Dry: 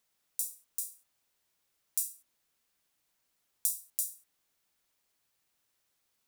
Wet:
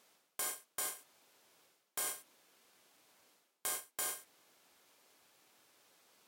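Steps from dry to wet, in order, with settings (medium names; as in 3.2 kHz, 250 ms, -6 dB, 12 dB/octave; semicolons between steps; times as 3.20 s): partial rectifier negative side -7 dB; high-pass 380 Hz 12 dB/octave; tilt EQ -4 dB/octave; band-stop 1.9 kHz, Q 27; reverse; compression 8:1, threshold -58 dBFS, peak gain reduction 19.5 dB; reverse; peaking EQ 16 kHz +6 dB 2.6 oct; trim +17.5 dB; Vorbis 64 kbps 48 kHz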